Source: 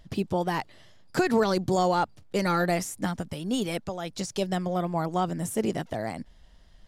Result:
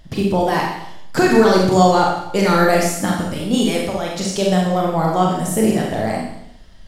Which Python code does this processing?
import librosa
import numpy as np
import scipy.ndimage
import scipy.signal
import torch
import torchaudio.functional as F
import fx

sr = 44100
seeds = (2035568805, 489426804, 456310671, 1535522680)

y = fx.rev_schroeder(x, sr, rt60_s=0.75, comb_ms=29, drr_db=-2.0)
y = F.gain(torch.from_numpy(y), 7.0).numpy()